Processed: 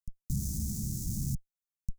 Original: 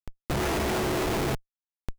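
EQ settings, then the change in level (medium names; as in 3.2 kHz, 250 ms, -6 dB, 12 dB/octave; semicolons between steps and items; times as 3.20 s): elliptic band-stop 190–6300 Hz, stop band 40 dB; 0.0 dB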